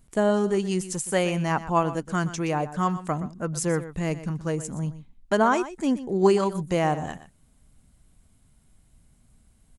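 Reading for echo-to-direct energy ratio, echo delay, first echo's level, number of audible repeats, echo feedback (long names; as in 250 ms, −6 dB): −14.0 dB, 122 ms, −14.0 dB, 1, repeats not evenly spaced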